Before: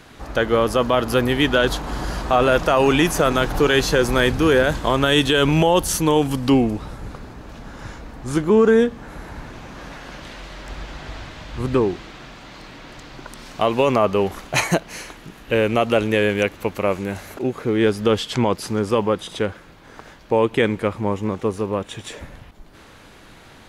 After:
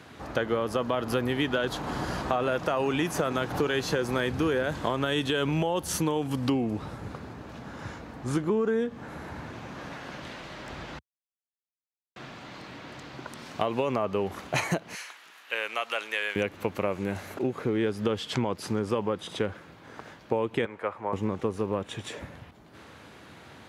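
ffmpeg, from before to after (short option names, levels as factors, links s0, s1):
-filter_complex "[0:a]asettb=1/sr,asplit=3[s0][s1][s2];[s0]atrim=end=14.954[s3];[s1]atrim=start=14.95:end=16.36,asetpts=PTS-STARTPTS,afade=t=in:d=0.004:c=qsin,afade=t=out:st=1.406:d=0.004:c=qsin,highpass=1200[s4];[s2]atrim=start=16.356[s5];[s3][s4]acrossfade=d=0.004:c1=hsin:c2=qsin[s6];[s6][s5]acrossfade=d=0.004:c1=qsin:c2=hsin,asettb=1/sr,asplit=3[s7][s8][s9];[s7]atrim=end=20.654[s10];[s8]atrim=start=20.65:end=21.13,asetpts=PTS-STARTPTS,afade=t=in:d=0.004:c=qsin,afade=t=out:st=0.476:d=0.004:c=qsin,acrossover=split=520 2100:gain=0.112 1 0.224[s11][s12][s13];[s11][s12][s13]amix=inputs=3:normalize=0[s14];[s9]atrim=start=21.126[s15];[s10][s14]acrossfade=d=0.004:c1=hsin:c2=qsin[s16];[s16][s15]acrossfade=d=0.004:c1=qsin:c2=hsin,asplit=3[s17][s18][s19];[s17]atrim=end=10.99,asetpts=PTS-STARTPTS,afade=t=out:st=10.986:d=0.004:c=hsin[s20];[s18]atrim=start=10.99:end=12.16,asetpts=PTS-STARTPTS,volume=0[s21];[s19]atrim=start=12.16,asetpts=PTS-STARTPTS,afade=t=in:d=0.004:c=hsin[s22];[s20][s21][s22]concat=n=3:v=0:a=1,highpass=f=75:w=0.5412,highpass=f=75:w=1.3066,highshelf=f=4200:g=-5.5,acompressor=threshold=0.0891:ratio=6,volume=0.75"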